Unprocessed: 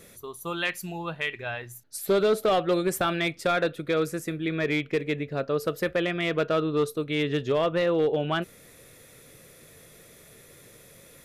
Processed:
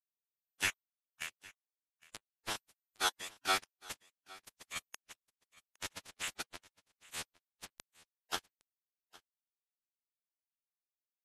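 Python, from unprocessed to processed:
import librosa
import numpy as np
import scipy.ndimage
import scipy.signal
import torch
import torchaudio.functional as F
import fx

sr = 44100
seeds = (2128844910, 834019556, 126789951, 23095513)

p1 = scipy.signal.sosfilt(scipy.signal.butter(2, 1400.0, 'highpass', fs=sr, output='sos'), x)
p2 = fx.dereverb_blind(p1, sr, rt60_s=0.76)
p3 = scipy.signal.sosfilt(scipy.signal.butter(16, 4500.0, 'lowpass', fs=sr, output='sos'), p2)
p4 = fx.peak_eq(p3, sr, hz=3100.0, db=-6.0, octaves=2.2)
p5 = (np.mod(10.0 ** (23.5 / 20.0) * p4 + 1.0, 2.0) - 1.0) / 10.0 ** (23.5 / 20.0)
p6 = p4 + (p5 * librosa.db_to_amplitude(-11.0))
p7 = fx.power_curve(p6, sr, exponent=3.0)
p8 = fx.quant_dither(p7, sr, seeds[0], bits=6, dither='none')
p9 = 10.0 ** (-25.5 / 20.0) * np.tanh(p8 / 10.0 ** (-25.5 / 20.0))
p10 = fx.chopper(p9, sr, hz=2.1, depth_pct=65, duty_pct=55)
p11 = fx.pitch_keep_formants(p10, sr, semitones=-10.5)
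p12 = p11 + fx.echo_single(p11, sr, ms=811, db=-22.0, dry=0)
y = p12 * librosa.db_to_amplitude(9.5)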